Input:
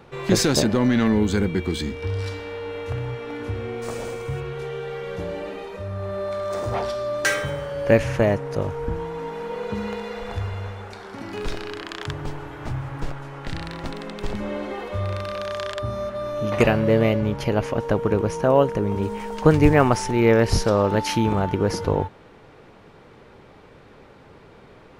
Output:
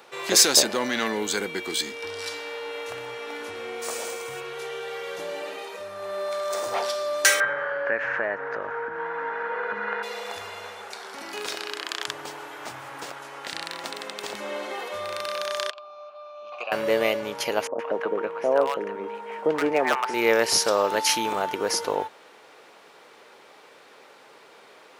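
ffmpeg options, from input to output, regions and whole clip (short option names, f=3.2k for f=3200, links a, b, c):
-filter_complex "[0:a]asettb=1/sr,asplit=3[a][b][c];[a]atrim=end=7.404[d];[b]atrim=start=7.4:end=10.03,asetpts=PTS-STARTPTS,afade=t=in:d=0.004:c=qsin,afade=t=out:st=2.626:d=0.004:c=qsin,acompressor=threshold=-25dB:ratio=3:attack=3.2:release=140:knee=1:detection=peak,lowpass=f=1.6k:t=q:w=4.8[e];[c]atrim=start=10.026[f];[d][e]acrossfade=d=0.004:c1=hsin:c2=qsin[g];[g][f]acrossfade=d=0.004:c1=qsin:c2=hsin,asettb=1/sr,asplit=3[h][i][j];[h]atrim=end=15.704[k];[i]atrim=start=15.7:end=16.72,asetpts=PTS-STARTPTS,afade=t=in:d=0.004:c=qsin,afade=t=out:st=1.016:d=0.004:c=qsin,asplit=3[l][m][n];[l]bandpass=f=730:t=q:w=8,volume=0dB[o];[m]bandpass=f=1.09k:t=q:w=8,volume=-6dB[p];[n]bandpass=f=2.44k:t=q:w=8,volume=-9dB[q];[o][p][q]amix=inputs=3:normalize=0,highpass=210,equalizer=f=300:t=q:w=4:g=-5,equalizer=f=440:t=q:w=4:g=-5,equalizer=f=690:t=q:w=4:g=-7,equalizer=f=1.8k:t=q:w=4:g=-4,equalizer=f=4.3k:t=q:w=4:g=7,lowpass=f=7.2k:w=0.5412,lowpass=f=7.2k:w=1.3066[r];[j]atrim=start=16.716[s];[k][r]acrossfade=d=0.004:c1=hsin:c2=qsin[t];[t][s]acrossfade=d=0.004:c1=qsin:c2=hsin,asettb=1/sr,asplit=3[u][v][w];[u]atrim=end=17.674[x];[v]atrim=start=17.67:end=20.14,asetpts=PTS-STARTPTS,afade=t=in:d=0.004:c=qsin,afade=t=out:st=2.466:d=0.004:c=qsin,acrossover=split=150 2600:gain=0.158 1 0.0631[y][z][aa];[y][z][aa]amix=inputs=3:normalize=0,asoftclip=type=hard:threshold=-7dB,acrossover=split=890[ab][ac];[ac]adelay=120[ad];[ab][ad]amix=inputs=2:normalize=0,atrim=end_sample=108927[ae];[w]atrim=start=20.136[af];[x][ae]acrossfade=d=0.004:c1=hsin:c2=qsin[ag];[ag][af]acrossfade=d=0.004:c1=qsin:c2=hsin,highpass=500,highshelf=f=3.9k:g=11.5"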